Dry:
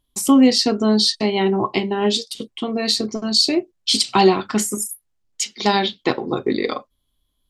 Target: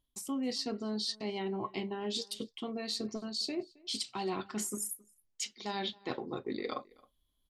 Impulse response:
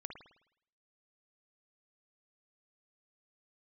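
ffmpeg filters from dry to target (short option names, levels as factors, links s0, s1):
-filter_complex "[0:a]areverse,acompressor=threshold=0.0447:ratio=5,areverse,asplit=2[s0][s1];[s1]adelay=268.2,volume=0.0631,highshelf=f=4000:g=-6.04[s2];[s0][s2]amix=inputs=2:normalize=0,volume=0.422"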